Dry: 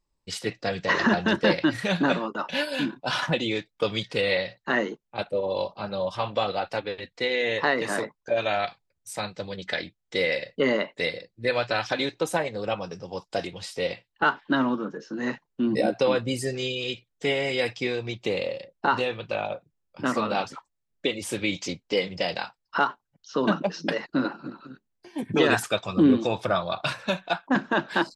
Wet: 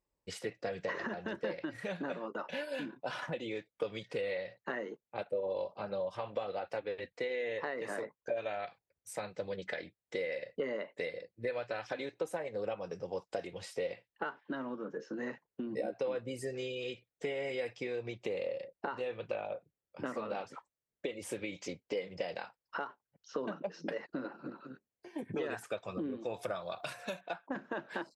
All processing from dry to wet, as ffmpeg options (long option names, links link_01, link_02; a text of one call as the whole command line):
ffmpeg -i in.wav -filter_complex "[0:a]asettb=1/sr,asplit=3[link_01][link_02][link_03];[link_01]atrim=end=26.344[link_04];[link_02]atrim=start=26.34:end=27.21,asetpts=PTS-STARTPTS,afade=type=in:duration=0.004:curve=qsin,afade=type=out:start_time=0.866:duration=0.004:curve=qsin,aemphasis=mode=production:type=75fm,aeval=exprs='val(0)+0.00631*sin(2*PI*710*n/s)':channel_layout=same[link_05];[link_03]atrim=start=27.206[link_06];[link_04][link_05]acrossfade=duration=0.004:curve1=hsin:curve2=qsin[link_07];[link_07][link_06]acrossfade=duration=0.004:curve1=qsin:curve2=hsin,highpass=42,acompressor=threshold=-32dB:ratio=6,equalizer=frequency=500:width_type=o:width=1:gain=8,equalizer=frequency=2000:width_type=o:width=1:gain=4,equalizer=frequency=4000:width_type=o:width=1:gain=-5,volume=-7.5dB" out.wav